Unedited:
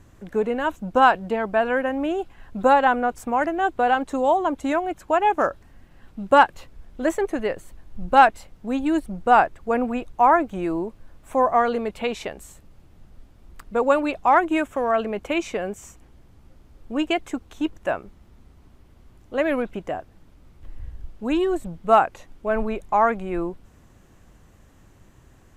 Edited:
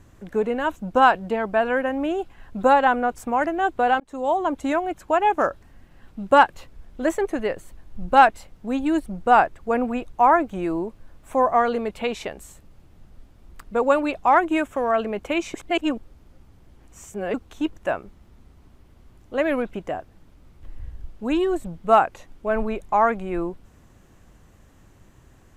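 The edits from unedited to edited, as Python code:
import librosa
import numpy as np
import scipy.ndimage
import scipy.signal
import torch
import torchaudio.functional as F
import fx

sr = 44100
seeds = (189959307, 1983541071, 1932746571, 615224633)

y = fx.edit(x, sr, fx.fade_in_span(start_s=4.0, length_s=0.59, curve='qsin'),
    fx.reverse_span(start_s=15.54, length_s=1.8), tone=tone)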